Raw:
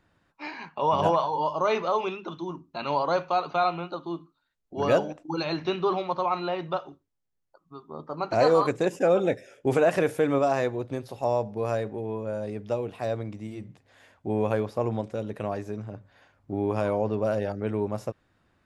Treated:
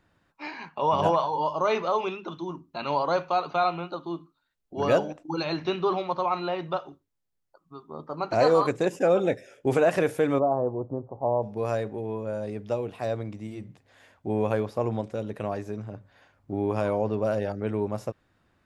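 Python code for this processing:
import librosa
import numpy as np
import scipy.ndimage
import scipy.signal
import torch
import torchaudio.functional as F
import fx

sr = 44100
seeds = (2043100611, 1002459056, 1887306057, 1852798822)

y = fx.steep_lowpass(x, sr, hz=1100.0, slope=48, at=(10.38, 11.42), fade=0.02)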